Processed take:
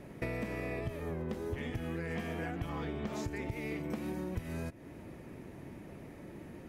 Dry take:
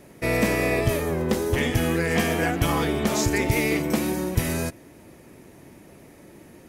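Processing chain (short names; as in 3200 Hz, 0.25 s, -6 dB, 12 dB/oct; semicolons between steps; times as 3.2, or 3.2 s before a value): tone controls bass +4 dB, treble -10 dB; compressor 16:1, threshold -32 dBFS, peak gain reduction 20.5 dB; 2.69–3.13 bell 11000 Hz -12.5 dB 0.48 oct; gain -2 dB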